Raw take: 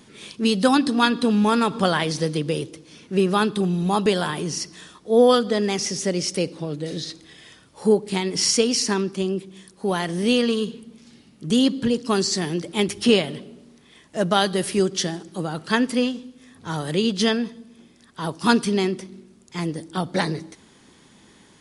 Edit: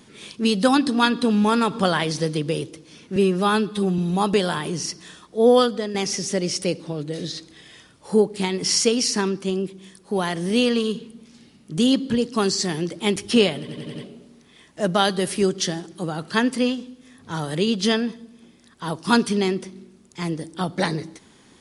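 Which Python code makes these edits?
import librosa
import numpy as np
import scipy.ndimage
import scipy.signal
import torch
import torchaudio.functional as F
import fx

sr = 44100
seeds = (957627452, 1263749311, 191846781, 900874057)

y = fx.edit(x, sr, fx.stretch_span(start_s=3.16, length_s=0.55, factor=1.5),
    fx.fade_out_to(start_s=5.32, length_s=0.35, floor_db=-9.5),
    fx.stutter(start_s=13.32, slice_s=0.09, count=5), tone=tone)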